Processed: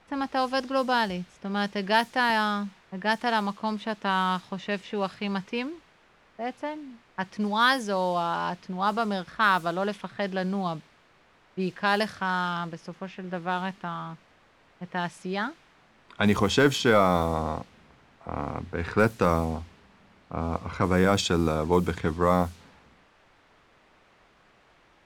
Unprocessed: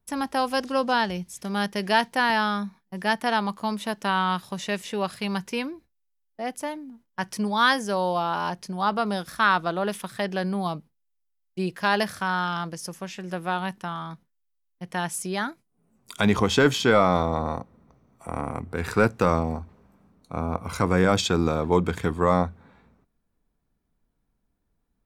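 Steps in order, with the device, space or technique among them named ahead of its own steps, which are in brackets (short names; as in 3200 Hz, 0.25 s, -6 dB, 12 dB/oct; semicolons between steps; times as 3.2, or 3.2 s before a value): cassette deck with a dynamic noise filter (white noise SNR 22 dB; low-pass opened by the level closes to 1700 Hz, open at -16.5 dBFS); gain -1.5 dB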